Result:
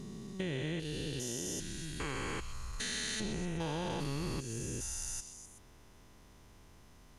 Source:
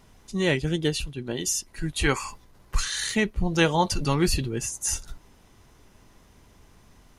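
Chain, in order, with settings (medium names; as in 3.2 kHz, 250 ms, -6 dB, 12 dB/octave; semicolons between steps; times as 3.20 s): spectrogram pixelated in time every 400 ms; compression 4:1, threshold -32 dBFS, peak gain reduction 7.5 dB; on a send: repeats whose band climbs or falls 126 ms, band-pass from 3.8 kHz, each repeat 0.7 oct, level -7.5 dB; on the sum: trim -2.5 dB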